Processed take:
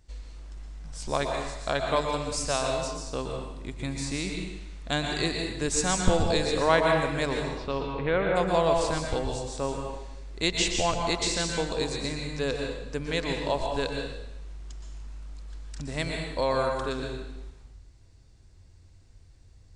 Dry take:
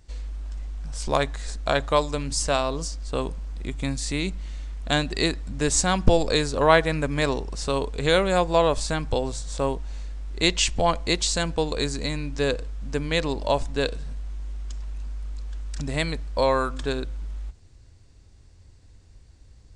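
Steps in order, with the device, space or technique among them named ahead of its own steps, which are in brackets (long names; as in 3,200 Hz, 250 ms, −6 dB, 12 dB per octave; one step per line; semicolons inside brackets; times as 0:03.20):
0:07.49–0:08.35: low-pass filter 4,300 Hz → 2,000 Hz 24 dB per octave
bathroom (convolution reverb RT60 0.90 s, pre-delay 113 ms, DRR 1 dB)
level −5.5 dB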